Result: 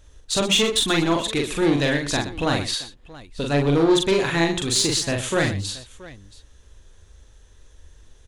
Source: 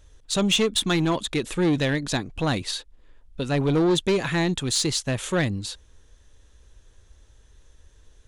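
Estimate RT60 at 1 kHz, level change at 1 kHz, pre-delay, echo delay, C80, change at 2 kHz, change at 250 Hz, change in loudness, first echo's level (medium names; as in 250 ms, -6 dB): no reverb, +4.0 dB, no reverb, 42 ms, no reverb, +4.0 dB, +1.5 dB, +3.0 dB, -3.0 dB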